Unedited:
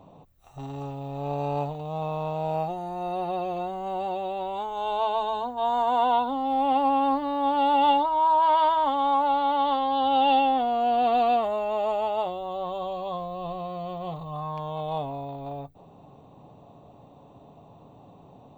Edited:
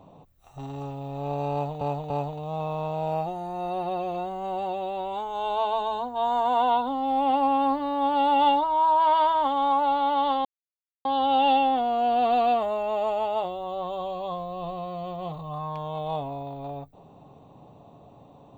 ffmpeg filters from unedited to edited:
-filter_complex "[0:a]asplit=4[s0][s1][s2][s3];[s0]atrim=end=1.812[s4];[s1]atrim=start=1.518:end=1.812[s5];[s2]atrim=start=1.518:end=9.87,asetpts=PTS-STARTPTS,afade=t=out:st=8.348:d=0.004:c=hsin,apad=pad_dur=0.6[s6];[s3]atrim=start=9.87,asetpts=PTS-STARTPTS,afade=t=in:d=0.004:c=hsin[s7];[s4][s5]acrossfade=d=0.004:c1=hsin:c2=hsin[s8];[s6][s7]concat=n=2:v=0:a=1[s9];[s8][s9]acrossfade=d=0.004:c1=hsin:c2=hsin"

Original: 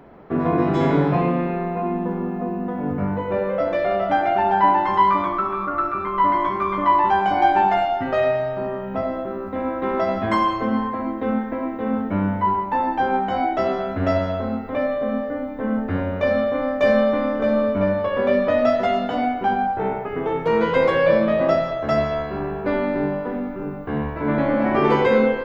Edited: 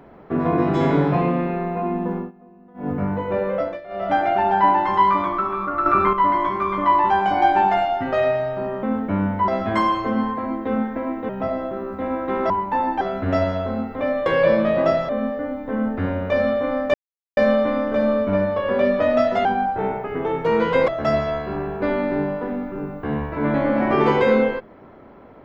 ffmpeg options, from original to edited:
-filter_complex "[0:a]asplit=17[s0][s1][s2][s3][s4][s5][s6][s7][s8][s9][s10][s11][s12][s13][s14][s15][s16];[s0]atrim=end=2.32,asetpts=PTS-STARTPTS,afade=t=out:st=2.17:d=0.15:silence=0.0794328[s17];[s1]atrim=start=2.32:end=2.74,asetpts=PTS-STARTPTS,volume=0.0794[s18];[s2]atrim=start=2.74:end=3.81,asetpts=PTS-STARTPTS,afade=t=in:d=0.15:silence=0.0794328,afade=t=out:st=0.83:d=0.24:silence=0.133352[s19];[s3]atrim=start=3.81:end=3.88,asetpts=PTS-STARTPTS,volume=0.133[s20];[s4]atrim=start=3.88:end=5.862,asetpts=PTS-STARTPTS,afade=t=in:d=0.24:silence=0.133352[s21];[s5]atrim=start=5.858:end=6.132,asetpts=PTS-STARTPTS,volume=2.66[s22];[s6]atrim=start=6.128:end=8.832[s23];[s7]atrim=start=11.848:end=12.502[s24];[s8]atrim=start=10.038:end=11.852[s25];[s9]atrim=start=8.828:end=10.042[s26];[s10]atrim=start=12.498:end=13.012[s27];[s11]atrim=start=13.748:end=15.002[s28];[s12]atrim=start=20.888:end=21.722[s29];[s13]atrim=start=14.998:end=16.85,asetpts=PTS-STARTPTS,afade=t=out:st=1.848:d=0.004:c=hsin,apad=pad_dur=0.43[s30];[s14]atrim=start=16.85:end=18.932,asetpts=PTS-STARTPTS,afade=t=in:d=0.004:c=hsin[s31];[s15]atrim=start=19.458:end=20.892[s32];[s16]atrim=start=21.718[s33];[s17][s18][s19][s20][s21]concat=n=5:v=0:a=1[s34];[s34][s22]acrossfade=d=0.004:c1=hsin:c2=hsin[s35];[s35][s23]acrossfade=d=0.004:c1=hsin:c2=hsin[s36];[s36][s24]acrossfade=d=0.004:c1=hsin:c2=hsin[s37];[s37][s25]acrossfade=d=0.004:c1=hsin:c2=hsin[s38];[s38][s26]acrossfade=d=0.004:c1=hsin:c2=hsin[s39];[s39][s27]acrossfade=d=0.004:c1=hsin:c2=hsin[s40];[s40][s28]acrossfade=d=0.004:c1=hsin:c2=hsin[s41];[s41][s29]acrossfade=d=0.004:c1=hsin:c2=hsin[s42];[s30][s31]concat=n=2:v=0:a=1[s43];[s42][s43]acrossfade=d=0.004:c1=hsin:c2=hsin[s44];[s44][s32]acrossfade=d=0.004:c1=hsin:c2=hsin[s45];[s45][s33]acrossfade=d=0.004:c1=hsin:c2=hsin"

